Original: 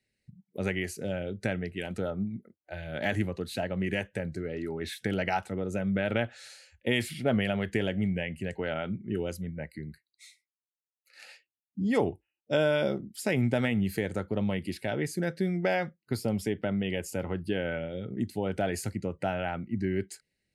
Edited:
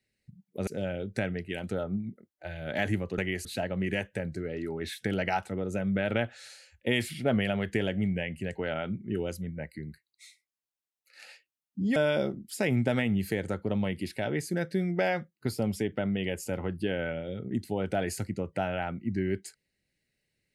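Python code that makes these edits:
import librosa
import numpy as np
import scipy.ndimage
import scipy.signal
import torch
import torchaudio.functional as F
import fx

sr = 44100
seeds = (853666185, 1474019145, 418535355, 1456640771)

y = fx.edit(x, sr, fx.move(start_s=0.67, length_s=0.27, to_s=3.45),
    fx.cut(start_s=11.96, length_s=0.66), tone=tone)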